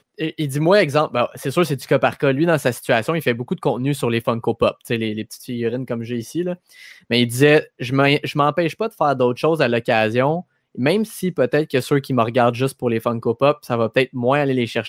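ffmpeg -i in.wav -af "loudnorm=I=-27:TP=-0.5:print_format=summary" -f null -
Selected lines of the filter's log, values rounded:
Input Integrated:    -19.4 LUFS
Input True Peak:      -1.2 dBTP
Input LRA:             3.4 LU
Input Threshold:     -29.5 LUFS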